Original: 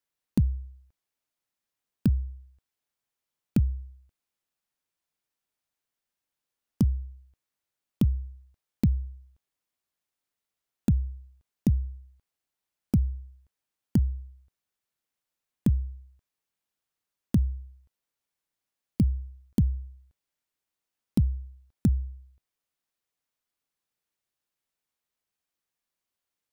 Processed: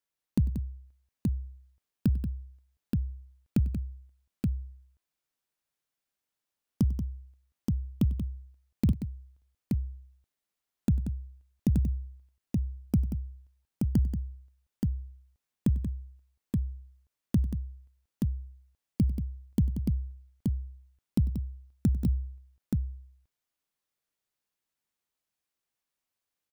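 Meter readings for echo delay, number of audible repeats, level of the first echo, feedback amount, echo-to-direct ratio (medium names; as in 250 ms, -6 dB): 97 ms, 3, -19.5 dB, no regular repeats, -2.5 dB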